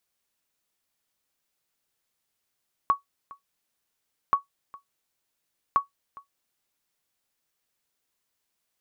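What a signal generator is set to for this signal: sonar ping 1120 Hz, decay 0.13 s, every 1.43 s, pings 3, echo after 0.41 s, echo -22.5 dB -12 dBFS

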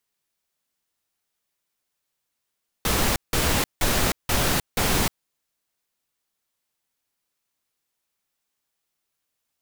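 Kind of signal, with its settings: noise bursts pink, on 0.31 s, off 0.17 s, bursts 5, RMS -21.5 dBFS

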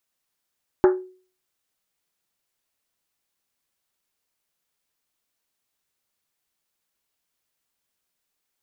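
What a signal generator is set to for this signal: Risset drum, pitch 370 Hz, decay 0.43 s, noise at 1300 Hz, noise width 830 Hz, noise 10%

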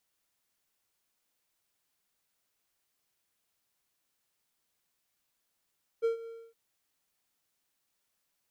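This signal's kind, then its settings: ADSR triangle 458 Hz, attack 28 ms, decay 0.118 s, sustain -17 dB, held 0.25 s, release 0.266 s -21.5 dBFS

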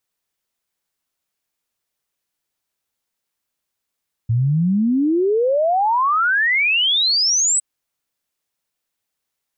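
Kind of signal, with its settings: log sweep 110 Hz -> 8200 Hz 3.31 s -14 dBFS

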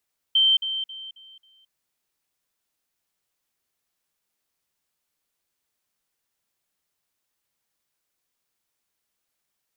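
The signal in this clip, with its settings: level ladder 3120 Hz -15 dBFS, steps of -10 dB, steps 5, 0.22 s 0.05 s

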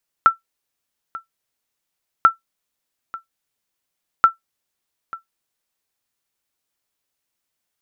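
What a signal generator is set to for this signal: sonar ping 1340 Hz, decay 0.13 s, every 1.99 s, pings 3, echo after 0.89 s, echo -19.5 dB -2 dBFS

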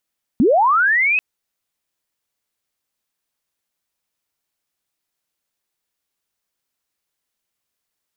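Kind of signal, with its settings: chirp linear 200 Hz -> 2600 Hz -10 dBFS -> -14 dBFS 0.79 s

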